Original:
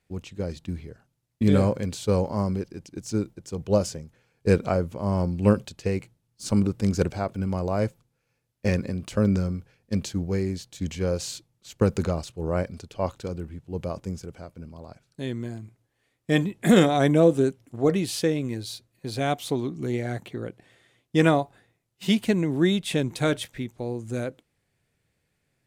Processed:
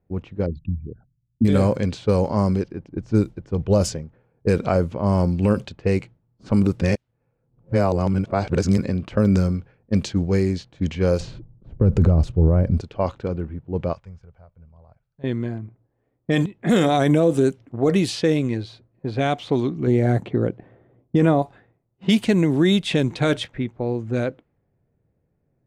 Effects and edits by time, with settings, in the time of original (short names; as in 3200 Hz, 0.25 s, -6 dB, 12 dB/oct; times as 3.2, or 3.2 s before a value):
0.46–1.45 formant sharpening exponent 3
2.89–3.95 low shelf 76 Hz +11 dB
6.82–8.78 reverse
11.2–12.81 tilt -4.5 dB/oct
13.93–15.24 passive tone stack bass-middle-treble 10-0-10
16.46–17.03 fade in, from -13 dB
19.87–21.42 tilt shelf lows +6.5 dB, about 1300 Hz
whole clip: limiter -15 dBFS; low-pass opened by the level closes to 650 Hz, open at -20.5 dBFS; gain +6.5 dB